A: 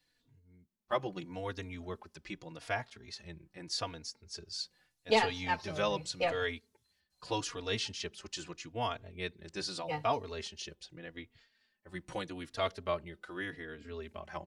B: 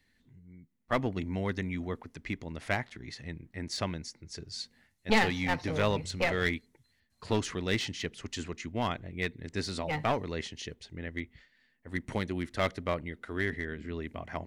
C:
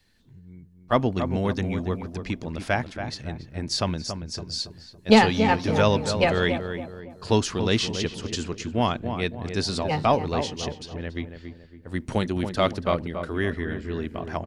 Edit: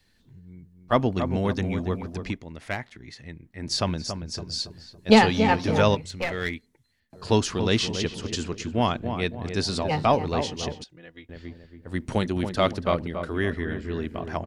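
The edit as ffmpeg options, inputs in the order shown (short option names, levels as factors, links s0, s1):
-filter_complex "[1:a]asplit=2[s0][s1];[2:a]asplit=4[s2][s3][s4][s5];[s2]atrim=end=2.39[s6];[s0]atrim=start=2.29:end=3.68[s7];[s3]atrim=start=3.58:end=5.952[s8];[s1]atrim=start=5.948:end=7.132[s9];[s4]atrim=start=7.128:end=10.842[s10];[0:a]atrim=start=10.838:end=11.292[s11];[s5]atrim=start=11.288[s12];[s6][s7]acrossfade=d=0.1:c1=tri:c2=tri[s13];[s13][s8]acrossfade=d=0.1:c1=tri:c2=tri[s14];[s14][s9]acrossfade=d=0.004:c1=hsin:c2=hsin[s15];[s15][s10]acrossfade=d=0.004:c1=hsin:c2=hsin[s16];[s16][s11]acrossfade=d=0.004:c1=hsin:c2=hsin[s17];[s17][s12]acrossfade=d=0.004:c1=hsin:c2=hsin"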